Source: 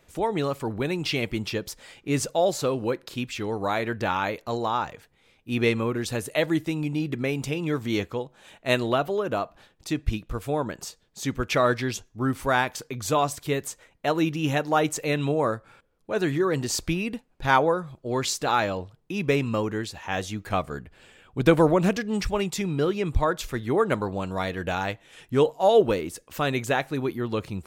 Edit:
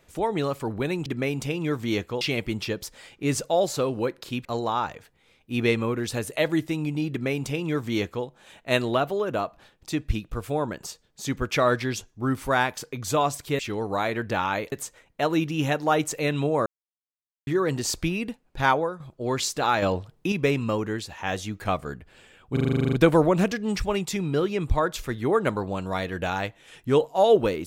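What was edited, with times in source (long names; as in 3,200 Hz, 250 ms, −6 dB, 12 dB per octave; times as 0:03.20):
0:03.30–0:04.43: move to 0:13.57
0:07.08–0:08.23: duplicate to 0:01.06
0:15.51–0:16.32: silence
0:17.47–0:17.85: fade out, to −9.5 dB
0:18.67–0:19.17: clip gain +6 dB
0:21.38: stutter 0.04 s, 11 plays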